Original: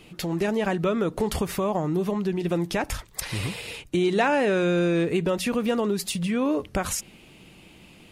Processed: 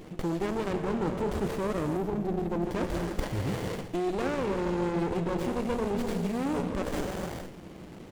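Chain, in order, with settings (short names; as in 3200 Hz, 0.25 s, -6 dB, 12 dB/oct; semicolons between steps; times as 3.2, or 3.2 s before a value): bell 490 Hz +6.5 dB 1.9 oct; in parallel at -10 dB: wavefolder -21 dBFS; on the sum: bell 7400 Hz +8.5 dB 0.43 oct; speakerphone echo 0.16 s, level -8 dB; non-linear reverb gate 0.5 s flat, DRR 6 dB; reverse; compressor 6:1, threshold -26 dBFS, peak gain reduction 13.5 dB; reverse; spectral gain 1.97–2.65, 540–11000 Hz -8 dB; running maximum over 33 samples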